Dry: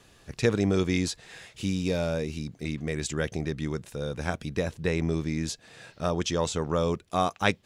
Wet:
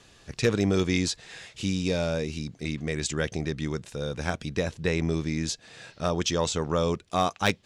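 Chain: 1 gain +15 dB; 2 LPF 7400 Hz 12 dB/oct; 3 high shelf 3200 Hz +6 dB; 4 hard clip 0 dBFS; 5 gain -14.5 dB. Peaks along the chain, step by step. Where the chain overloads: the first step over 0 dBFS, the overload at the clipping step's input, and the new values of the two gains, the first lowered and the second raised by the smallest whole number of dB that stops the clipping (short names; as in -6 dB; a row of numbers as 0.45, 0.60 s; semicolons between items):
+7.0, +7.0, +9.0, 0.0, -14.5 dBFS; step 1, 9.0 dB; step 1 +6 dB, step 5 -5.5 dB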